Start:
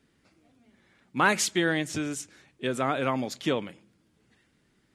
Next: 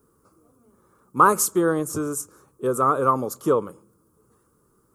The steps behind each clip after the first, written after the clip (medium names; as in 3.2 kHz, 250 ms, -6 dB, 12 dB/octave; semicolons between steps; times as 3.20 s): FFT filter 110 Hz 0 dB, 260 Hz -4 dB, 460 Hz +7 dB, 710 Hz -7 dB, 1.2 kHz +11 dB, 1.9 kHz -22 dB, 3.7 kHz -19 dB, 5.8 kHz -5 dB, 13 kHz +14 dB; trim +4.5 dB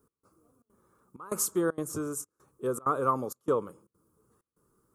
trance gate "x..xxxxx.xxxxx" 194 bpm -24 dB; trim -7 dB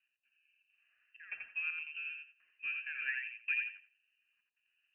rotary cabinet horn 0.7 Hz, later 6.7 Hz, at 2.63 s; frequency inversion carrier 2.9 kHz; thinning echo 85 ms, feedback 22%, high-pass 600 Hz, level -3.5 dB; trim -8.5 dB